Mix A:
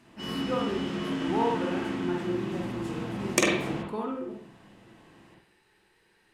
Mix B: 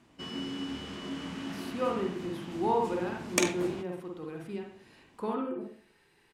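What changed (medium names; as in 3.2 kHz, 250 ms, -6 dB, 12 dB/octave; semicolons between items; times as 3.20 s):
speech: entry +1.30 s; background: send off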